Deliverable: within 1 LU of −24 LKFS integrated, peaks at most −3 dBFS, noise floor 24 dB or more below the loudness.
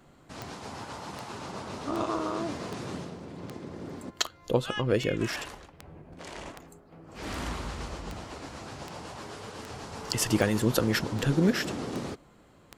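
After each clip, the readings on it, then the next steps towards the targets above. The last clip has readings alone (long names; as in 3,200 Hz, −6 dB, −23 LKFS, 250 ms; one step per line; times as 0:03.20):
number of clicks 17; integrated loudness −32.0 LKFS; sample peak −8.5 dBFS; target loudness −24.0 LKFS
→ click removal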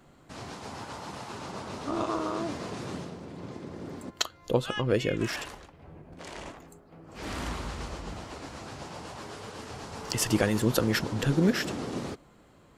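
number of clicks 0; integrated loudness −32.0 LKFS; sample peak −8.5 dBFS; target loudness −24.0 LKFS
→ level +8 dB
brickwall limiter −3 dBFS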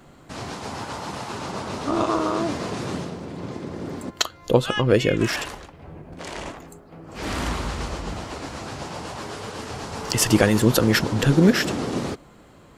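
integrated loudness −24.0 LKFS; sample peak −3.0 dBFS; background noise floor −49 dBFS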